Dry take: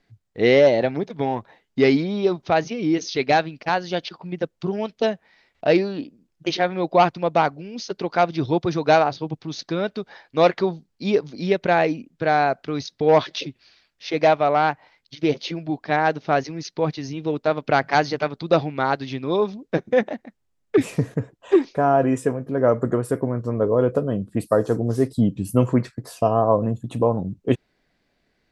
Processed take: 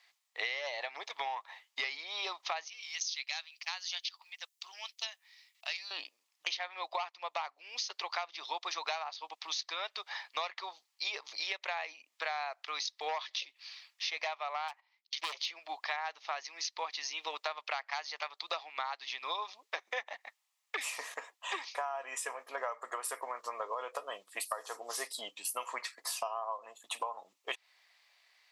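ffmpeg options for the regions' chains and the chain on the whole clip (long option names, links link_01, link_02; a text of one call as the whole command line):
ffmpeg -i in.wav -filter_complex "[0:a]asettb=1/sr,asplit=3[link_01][link_02][link_03];[link_01]atrim=end=2.684[link_04];[link_02]atrim=start=2.68:end=5.91,asetpts=PTS-STARTPTS,afade=type=in:duration=0.004:curve=qsin,afade=type=out:start_time=3.226:duration=0.004:curve=qsin,highpass=400,aderivative[link_05];[link_03]atrim=start=5.906[link_06];[link_04][link_05]acrossfade=duration=0.004:curve1=hsin:curve2=qsin[link_07];[link_07][link_06]acrossfade=duration=0.004:curve1=qsin:curve2=hsin,asettb=1/sr,asplit=3[link_08][link_09][link_10];[link_08]atrim=end=14.684[link_11];[link_09]atrim=start=14.68:end=15.46,asetpts=PTS-STARTPTS,afade=type=in:duration=0.004:curve=qsin,afade=type=out:start_time=0.776:duration=0.004:curve=qsin,agate=range=-19dB:threshold=-49dB:ratio=16:release=100:detection=peak,asoftclip=type=hard:threshold=-21dB[link_12];[link_10]atrim=start=15.456[link_13];[link_11][link_12]acrossfade=duration=0.004:curve1=hsin:curve2=qsin[link_14];[link_14][link_13]acrossfade=duration=0.004:curve1=qsin:curve2=hsin,highpass=frequency=980:width=0.5412,highpass=frequency=980:width=1.3066,equalizer=frequency=1500:width_type=o:width=0.27:gain=-12.5,acompressor=threshold=-41dB:ratio=16,volume=7.5dB" out.wav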